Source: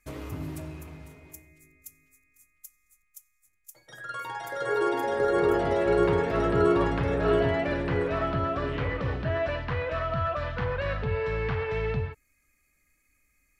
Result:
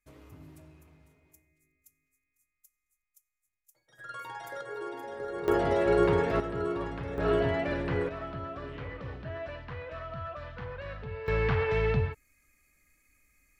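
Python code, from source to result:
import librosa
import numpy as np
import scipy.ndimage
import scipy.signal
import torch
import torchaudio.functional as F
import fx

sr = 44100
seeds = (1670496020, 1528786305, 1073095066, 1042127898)

y = fx.gain(x, sr, db=fx.steps((0.0, -15.0), (3.99, -5.5), (4.61, -12.5), (5.48, -1.0), (6.4, -10.0), (7.18, -3.0), (8.09, -10.5), (11.28, 2.0)))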